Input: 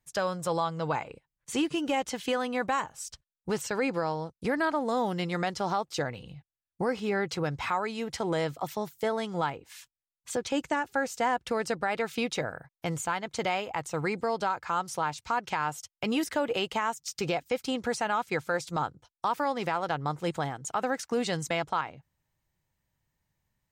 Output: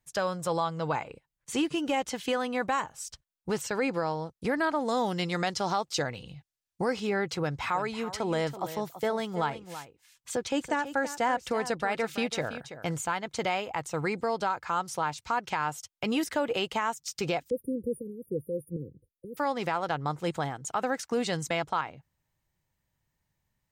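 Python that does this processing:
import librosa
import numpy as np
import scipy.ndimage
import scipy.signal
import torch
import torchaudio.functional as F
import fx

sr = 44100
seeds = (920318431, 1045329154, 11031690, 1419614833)

y = fx.peak_eq(x, sr, hz=5600.0, db=6.0, octaves=1.9, at=(4.79, 7.07))
y = fx.echo_single(y, sr, ms=331, db=-12.5, at=(7.74, 13.0), fade=0.02)
y = fx.brickwall_bandstop(y, sr, low_hz=540.0, high_hz=9200.0, at=(17.5, 19.37))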